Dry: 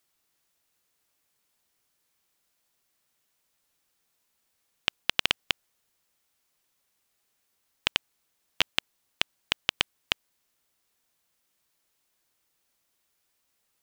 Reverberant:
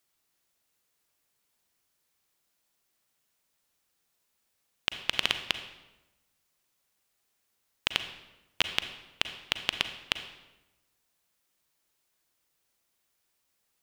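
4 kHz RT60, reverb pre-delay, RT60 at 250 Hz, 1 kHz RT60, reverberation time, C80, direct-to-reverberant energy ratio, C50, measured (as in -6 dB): 0.75 s, 35 ms, 1.2 s, 1.0 s, 1.0 s, 12.0 dB, 8.5 dB, 9.5 dB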